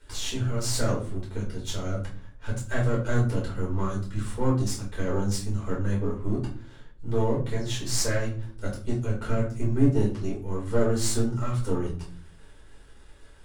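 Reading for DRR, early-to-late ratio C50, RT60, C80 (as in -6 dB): -5.5 dB, 7.0 dB, 0.45 s, 13.0 dB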